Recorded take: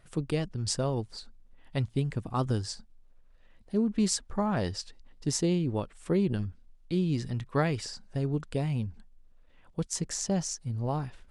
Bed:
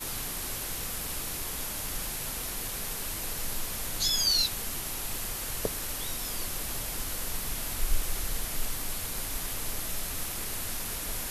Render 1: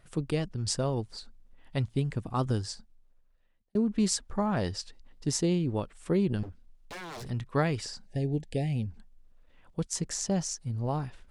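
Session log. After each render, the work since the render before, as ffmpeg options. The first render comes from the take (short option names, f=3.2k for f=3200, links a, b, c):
-filter_complex "[0:a]asettb=1/sr,asplit=3[a][b][c];[a]atrim=end=6.434[d];[b]atrim=start=6.43:end=7.3,asetpts=PTS-STARTPTS,afade=t=in:d=0.004:c=qsin,afade=t=out:st=0.866:d=0.004:c=qsin,aeval=exprs='0.0158*(abs(mod(val(0)/0.0158+3,4)-2)-1)':c=same[e];[c]atrim=start=7.296[f];[d][e]acrossfade=d=0.004:c1=hsin:c2=qsin[g];[g][f]acrossfade=d=0.004:c1=qsin:c2=hsin,asettb=1/sr,asplit=3[h][i][j];[h]atrim=end=8.064[k];[i]atrim=start=8.06:end=8.86,asetpts=PTS-STARTPTS,afade=t=in:d=0.004:c=qsin,afade=t=out:st=0.796:d=0.004:c=qsin,asuperstop=centerf=1200:order=20:qfactor=1.5[l];[j]atrim=start=8.856[m];[k][l]acrossfade=d=0.004:c1=hsin:c2=qsin[n];[n][m]acrossfade=d=0.004:c1=qsin:c2=hsin,asplit=2[o][p];[o]atrim=end=3.75,asetpts=PTS-STARTPTS,afade=t=out:st=2.57:d=1.18[q];[p]atrim=start=3.75,asetpts=PTS-STARTPTS,afade=t=in:d=0.004:c=hsin[r];[q][r]concat=n=2:v=0:a=1"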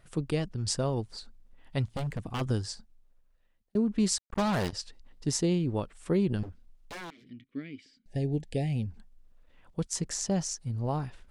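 -filter_complex "[0:a]asplit=3[a][b][c];[a]afade=t=out:st=1.86:d=0.02[d];[b]aeval=exprs='0.0447*(abs(mod(val(0)/0.0447+3,4)-2)-1)':c=same,afade=t=in:st=1.86:d=0.02,afade=t=out:st=2.4:d=0.02[e];[c]afade=t=in:st=2.4:d=0.02[f];[d][e][f]amix=inputs=3:normalize=0,asettb=1/sr,asplit=3[g][h][i];[g]atrim=end=4.184[j];[h]atrim=start=4.18:end=4.73,asetpts=PTS-STARTPTS,afade=t=in:d=0.004:c=qsin,afade=t=out:st=0.546:d=0.004:c=qsin,acrusher=bits=4:mix=0:aa=0.5[k];[i]atrim=start=4.726[l];[j][k]acrossfade=d=0.004:c1=hsin:c2=qsin[m];[m][l]acrossfade=d=0.004:c1=qsin:c2=hsin,asettb=1/sr,asplit=3[n][o][p];[n]atrim=end=7.104[q];[o]atrim=start=7.1:end=8.06,asetpts=PTS-STARTPTS,afade=t=in:d=0.004:c=qsin,afade=t=out:st=0.956:d=0.004:c=qsin,asplit=3[r][s][t];[r]bandpass=f=270:t=q:w=8,volume=0dB[u];[s]bandpass=f=2.29k:t=q:w=8,volume=-6dB[v];[t]bandpass=f=3.01k:t=q:w=8,volume=-9dB[w];[u][v][w]amix=inputs=3:normalize=0[x];[p]atrim=start=8.056[y];[q][x]acrossfade=d=0.004:c1=hsin:c2=qsin[z];[z][y]acrossfade=d=0.004:c1=qsin:c2=hsin"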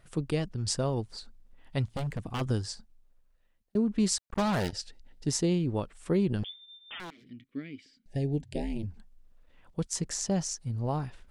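-filter_complex "[0:a]asettb=1/sr,asplit=3[a][b][c];[a]atrim=end=4.604[d];[b]atrim=start=4.6:end=5.27,asetpts=PTS-STARTPTS,afade=t=in:d=0.004:c=qsin,afade=t=out:st=0.666:d=0.004:c=qsin,asuperstop=centerf=1100:order=8:qfactor=3.5[e];[c]atrim=start=5.266[f];[d][e]acrossfade=d=0.004:c1=hsin:c2=qsin[g];[g][f]acrossfade=d=0.004:c1=qsin:c2=hsin,asettb=1/sr,asplit=3[h][i][j];[h]atrim=end=6.444[k];[i]atrim=start=6.44:end=7,asetpts=PTS-STARTPTS,afade=t=in:d=0.004:c=qsin,afade=t=out:st=0.556:d=0.004:c=qsin,lowpass=f=3.1k:t=q:w=0.5098,lowpass=f=3.1k:t=q:w=0.6013,lowpass=f=3.1k:t=q:w=0.9,lowpass=f=3.1k:t=q:w=2.563,afreqshift=-3600[l];[j]atrim=start=6.996[m];[k][l]acrossfade=d=0.004:c1=hsin:c2=qsin[n];[n][m]acrossfade=d=0.004:c1=qsin:c2=hsin,asplit=3[o][p][q];[o]afade=t=out:st=8.4:d=0.02[r];[p]aeval=exprs='val(0)*sin(2*PI*110*n/s)':c=same,afade=t=in:st=8.4:d=0.02,afade=t=out:st=8.82:d=0.02[s];[q]afade=t=in:st=8.82:d=0.02[t];[r][s][t]amix=inputs=3:normalize=0"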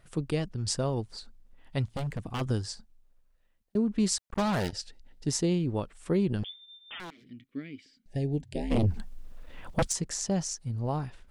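-filter_complex "[0:a]asplit=3[a][b][c];[a]afade=t=out:st=8.7:d=0.02[d];[b]aeval=exprs='0.1*sin(PI/2*3.55*val(0)/0.1)':c=same,afade=t=in:st=8.7:d=0.02,afade=t=out:st=9.91:d=0.02[e];[c]afade=t=in:st=9.91:d=0.02[f];[d][e][f]amix=inputs=3:normalize=0"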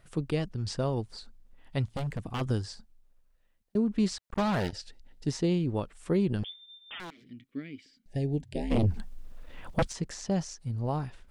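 -filter_complex "[0:a]acrossover=split=4600[a][b];[b]acompressor=threshold=-48dB:ratio=4:attack=1:release=60[c];[a][c]amix=inputs=2:normalize=0"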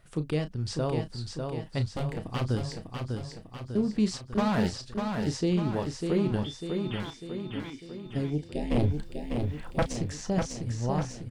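-filter_complex "[0:a]asplit=2[a][b];[b]adelay=33,volume=-10.5dB[c];[a][c]amix=inputs=2:normalize=0,asplit=2[d][e];[e]aecho=0:1:598|1196|1794|2392|2990|3588|4186:0.562|0.309|0.17|0.0936|0.0515|0.0283|0.0156[f];[d][f]amix=inputs=2:normalize=0"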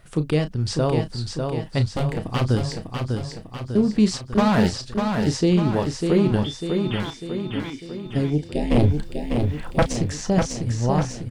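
-af "volume=8dB"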